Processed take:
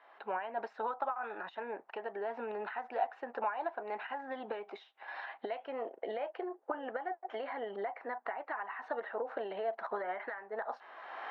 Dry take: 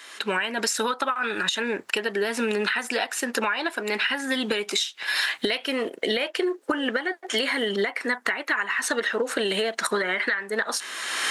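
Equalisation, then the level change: band-pass filter 760 Hz, Q 4; distance through air 310 m; +1.0 dB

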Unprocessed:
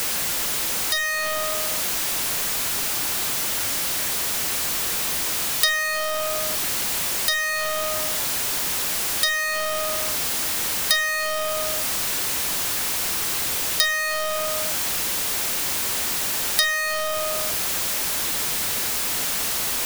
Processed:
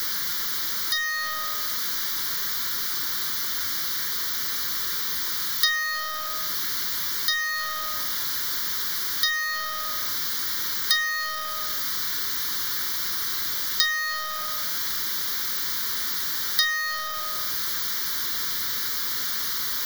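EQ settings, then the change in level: bass shelf 480 Hz -9 dB; static phaser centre 2.6 kHz, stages 6; 0.0 dB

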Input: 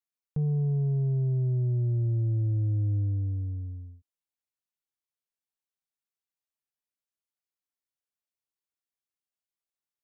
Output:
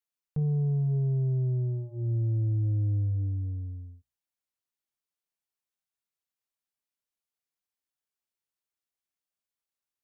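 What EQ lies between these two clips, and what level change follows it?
hum notches 60/120/180/240/300/360/420/480/540 Hz; 0.0 dB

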